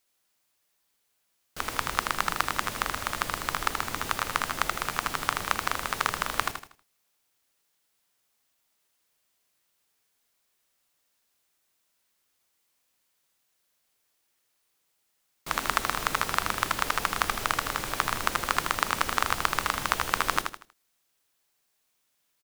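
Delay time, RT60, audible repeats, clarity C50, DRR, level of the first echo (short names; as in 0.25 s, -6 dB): 79 ms, none, 4, none, none, -6.0 dB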